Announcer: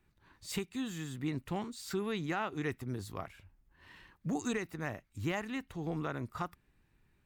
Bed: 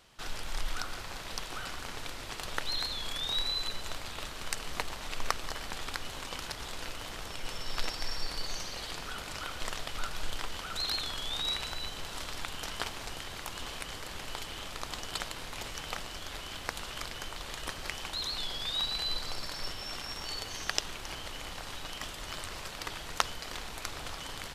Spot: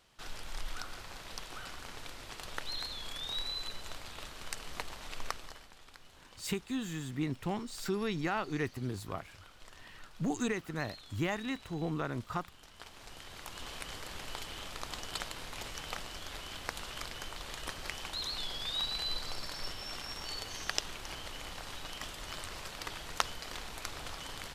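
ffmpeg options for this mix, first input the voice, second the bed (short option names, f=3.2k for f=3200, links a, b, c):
-filter_complex "[0:a]adelay=5950,volume=1.5dB[a];[1:a]volume=10dB,afade=t=out:st=5.2:d=0.5:silence=0.237137,afade=t=in:st=12.73:d=1.16:silence=0.16788[b];[a][b]amix=inputs=2:normalize=0"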